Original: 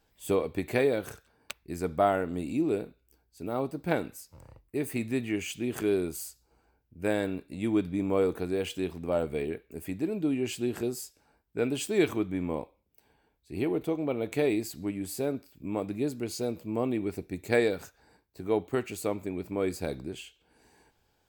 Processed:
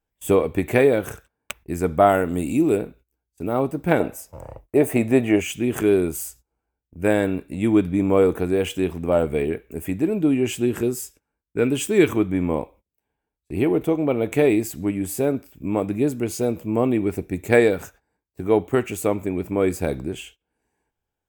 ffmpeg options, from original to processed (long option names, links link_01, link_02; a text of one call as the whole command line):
ffmpeg -i in.wav -filter_complex "[0:a]asettb=1/sr,asplit=3[link_01][link_02][link_03];[link_01]atrim=end=2.094[link_04];[link_02]atrim=start=2.09:end=2.77,asetpts=PTS-STARTPTS,afade=type=in:duration=0.004:curve=qsin,afade=type=out:start_time=0.676:duration=0.004:curve=qsin,aemphasis=mode=production:type=cd[link_05];[link_03]atrim=start=2.766[link_06];[link_04][link_05]acrossfade=duration=0.004:curve1=hsin:curve2=qsin[link_07];[link_07][link_06]acrossfade=duration=0.004:curve1=qsin:curve2=hsin,asettb=1/sr,asplit=3[link_08][link_09][link_10];[link_08]atrim=end=4.004[link_11];[link_09]atrim=start=4:end=5.41,asetpts=PTS-STARTPTS,afade=type=in:duration=0.004:curve=qsin,afade=type=out:start_time=1.406:duration=0.004:curve=qsin,equalizer=frequency=640:width_type=o:width=1.2:gain=12.5[link_12];[link_10]atrim=start=5.406[link_13];[link_11][link_12]acrossfade=duration=0.004:curve1=hsin:curve2=qsin[link_14];[link_14][link_13]acrossfade=duration=0.004:curve1=qsin:curve2=hsin,asettb=1/sr,asplit=3[link_15][link_16][link_17];[link_15]atrim=end=10.654[link_18];[link_16]atrim=start=10.65:end=12.15,asetpts=PTS-STARTPTS,afade=type=in:duration=0.004:curve=qsin,afade=type=out:start_time=1.496:duration=0.004:curve=qsin,equalizer=frequency=710:width=2.9:gain=-7[link_19];[link_17]atrim=start=12.146[link_20];[link_18][link_19]acrossfade=duration=0.004:curve1=hsin:curve2=qsin[link_21];[link_21][link_20]acrossfade=duration=0.004:curve1=qsin:curve2=hsin,equalizer=frequency=4400:width=2.8:gain=-11.5,agate=range=-22dB:threshold=-55dB:ratio=16:detection=peak,lowshelf=frequency=65:gain=5,volume=9dB" out.wav